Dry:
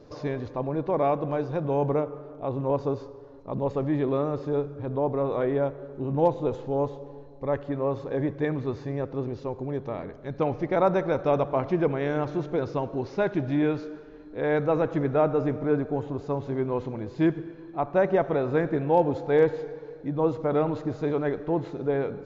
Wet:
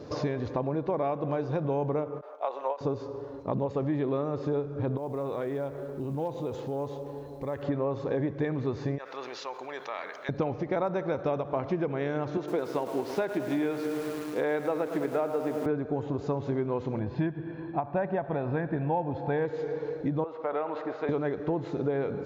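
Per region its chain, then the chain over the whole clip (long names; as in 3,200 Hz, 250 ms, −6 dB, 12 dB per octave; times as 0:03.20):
0:02.21–0:02.81: high-pass filter 590 Hz 24 dB per octave + downward expander −47 dBFS
0:04.97–0:07.63: high-shelf EQ 3,100 Hz +5.5 dB + downward compressor 2.5 to 1, threshold −43 dBFS + log-companded quantiser 8 bits
0:08.98–0:10.29: high-pass filter 1,300 Hz + envelope flattener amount 50%
0:12.37–0:15.66: high-pass filter 260 Hz + feedback echo at a low word length 107 ms, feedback 80%, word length 7 bits, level −12 dB
0:16.99–0:19.45: high-frequency loss of the air 260 metres + comb filter 1.2 ms, depth 43%
0:20.24–0:21.09: band-pass filter 610–2,500 Hz + downward compressor 1.5 to 1, threshold −36 dBFS
whole clip: high-pass filter 58 Hz; downward compressor 6 to 1, threshold −34 dBFS; every ending faded ahead of time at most 260 dB per second; level +7.5 dB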